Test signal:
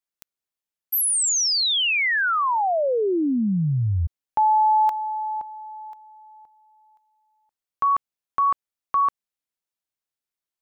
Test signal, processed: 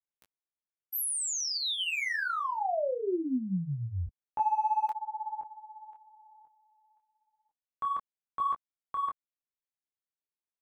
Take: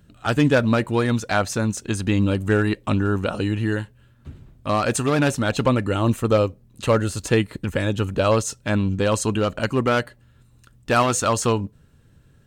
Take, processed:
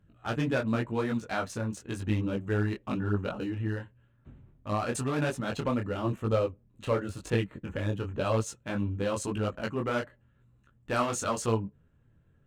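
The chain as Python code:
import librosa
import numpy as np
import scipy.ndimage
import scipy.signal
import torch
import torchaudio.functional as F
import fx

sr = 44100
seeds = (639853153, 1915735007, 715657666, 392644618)

y = fx.wiener(x, sr, points=9)
y = fx.detune_double(y, sr, cents=33)
y = y * librosa.db_to_amplitude(-6.0)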